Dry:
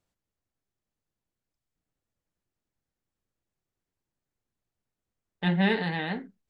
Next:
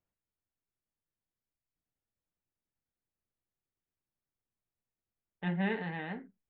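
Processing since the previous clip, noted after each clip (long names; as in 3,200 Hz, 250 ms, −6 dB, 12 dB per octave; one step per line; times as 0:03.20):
low-pass filter 2,800 Hz 24 dB per octave
level −8 dB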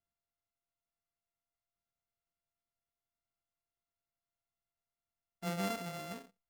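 samples sorted by size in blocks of 64 samples
level −4.5 dB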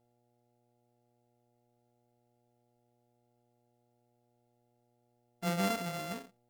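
hum with harmonics 120 Hz, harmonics 7, −79 dBFS −2 dB per octave
level +4.5 dB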